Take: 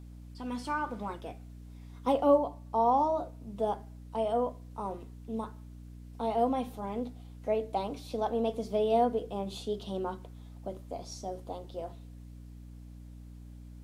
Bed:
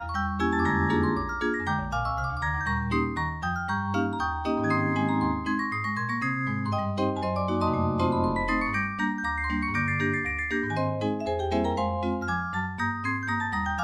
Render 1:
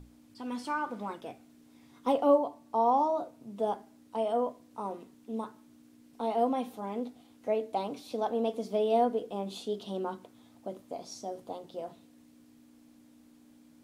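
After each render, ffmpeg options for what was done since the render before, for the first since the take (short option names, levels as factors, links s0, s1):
-af "bandreject=f=60:t=h:w=6,bandreject=f=120:t=h:w=6,bandreject=f=180:t=h:w=6"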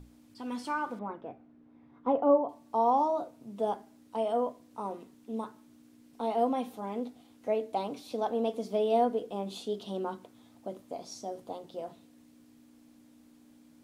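-filter_complex "[0:a]asettb=1/sr,asplit=3[s0][s1][s2];[s0]atrim=end=0.994[s3];[s1]atrim=start=0.99:end=2.49,asetpts=PTS-STARTPTS,afade=t=in:d=0.004:c=qsin,afade=t=out:st=1.496:d=0.004:c=qsin,lowpass=1400[s4];[s2]atrim=start=2.486[s5];[s3][s4]acrossfade=d=0.004:c1=hsin:c2=qsin[s6];[s6][s5]acrossfade=d=0.004:c1=qsin:c2=hsin"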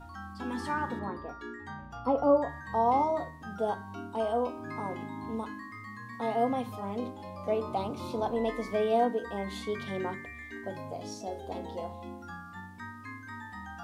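-filter_complex "[1:a]volume=0.178[s0];[0:a][s0]amix=inputs=2:normalize=0"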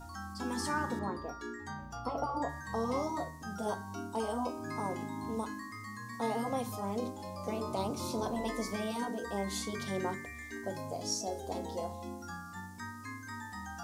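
-af "afftfilt=real='re*lt(hypot(re,im),0.251)':imag='im*lt(hypot(re,im),0.251)':win_size=1024:overlap=0.75,highshelf=f=4300:t=q:w=1.5:g=9.5"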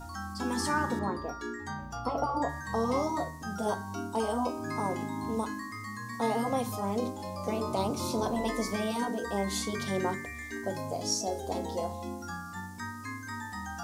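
-af "volume=1.68"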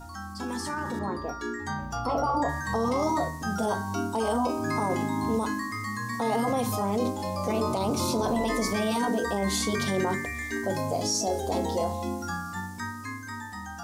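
-af "alimiter=level_in=1.12:limit=0.0631:level=0:latency=1:release=13,volume=0.891,dynaudnorm=f=260:g=11:m=2.24"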